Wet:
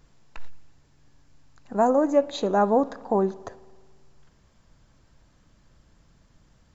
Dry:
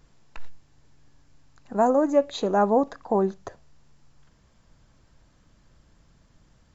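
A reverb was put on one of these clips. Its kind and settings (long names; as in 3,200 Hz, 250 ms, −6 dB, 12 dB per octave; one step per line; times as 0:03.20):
spring reverb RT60 1.7 s, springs 55 ms, chirp 50 ms, DRR 19.5 dB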